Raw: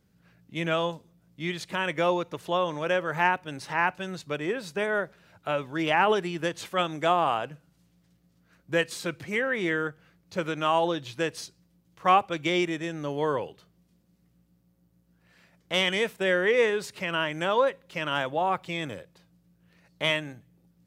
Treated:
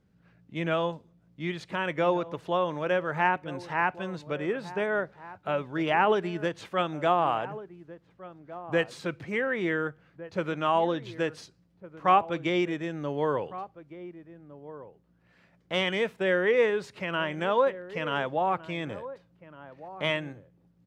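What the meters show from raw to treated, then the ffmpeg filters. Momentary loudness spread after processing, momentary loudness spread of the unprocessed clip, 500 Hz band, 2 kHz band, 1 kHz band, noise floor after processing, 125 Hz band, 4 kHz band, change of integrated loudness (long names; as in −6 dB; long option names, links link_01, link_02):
20 LU, 11 LU, 0.0 dB, −2.5 dB, −0.5 dB, −65 dBFS, 0.0 dB, −5.0 dB, −1.0 dB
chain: -filter_complex "[0:a]aemphasis=mode=reproduction:type=75kf,asplit=2[link_01][link_02];[link_02]adelay=1458,volume=-15dB,highshelf=frequency=4000:gain=-32.8[link_03];[link_01][link_03]amix=inputs=2:normalize=0"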